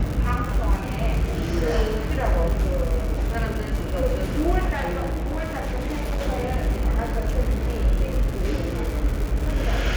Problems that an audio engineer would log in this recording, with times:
crackle 230/s -27 dBFS
4.74–6.22 clipped -22 dBFS

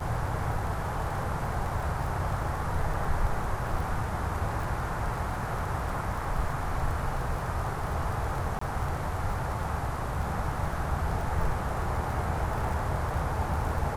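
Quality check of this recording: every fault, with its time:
crackle 28/s -34 dBFS
8.59–8.61 gap 24 ms

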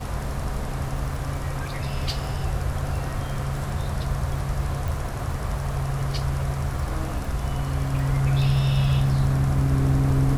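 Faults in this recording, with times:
crackle 50/s -32 dBFS
4.88 pop

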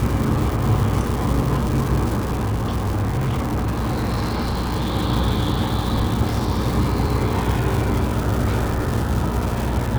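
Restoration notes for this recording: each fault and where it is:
buzz 60 Hz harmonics 9 -25 dBFS
crackle 450/s -23 dBFS
2.18–4.94 clipped -18 dBFS

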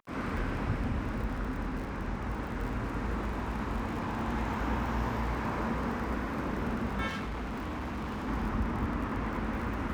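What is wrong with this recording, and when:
crackle 39/s -39 dBFS
7.07–8.29 clipped -33 dBFS

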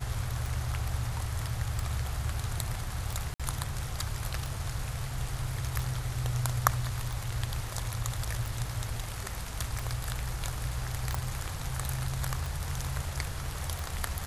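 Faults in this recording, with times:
tick 45 rpm
3.34–3.4 gap 56 ms
11.15 pop

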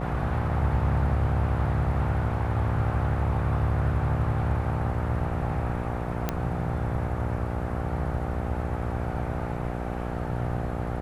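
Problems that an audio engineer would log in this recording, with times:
buzz 60 Hz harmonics 13 -32 dBFS
6.29 pop -12 dBFS

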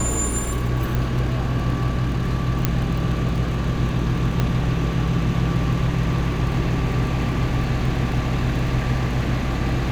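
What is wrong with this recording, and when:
crackle 16/s -28 dBFS
hum 60 Hz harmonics 5 -26 dBFS
0.95 pop
2.65 pop -4 dBFS
4.4 pop -9 dBFS

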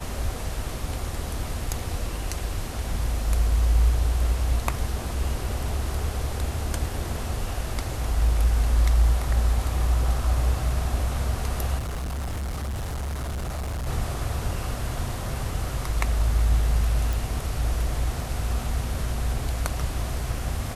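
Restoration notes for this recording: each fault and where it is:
11.78–13.88 clipped -27 dBFS
17.13 pop

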